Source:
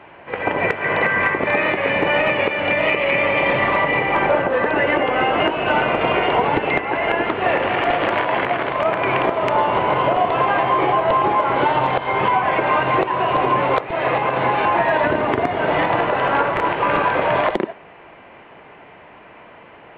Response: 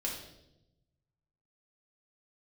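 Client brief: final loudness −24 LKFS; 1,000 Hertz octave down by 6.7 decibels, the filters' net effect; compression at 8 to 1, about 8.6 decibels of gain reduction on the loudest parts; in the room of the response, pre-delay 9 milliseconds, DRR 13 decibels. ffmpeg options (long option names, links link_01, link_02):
-filter_complex "[0:a]equalizer=frequency=1000:width_type=o:gain=-8.5,acompressor=threshold=-25dB:ratio=8,asplit=2[link_01][link_02];[1:a]atrim=start_sample=2205,adelay=9[link_03];[link_02][link_03]afir=irnorm=-1:irlink=0,volume=-15.5dB[link_04];[link_01][link_04]amix=inputs=2:normalize=0,volume=4dB"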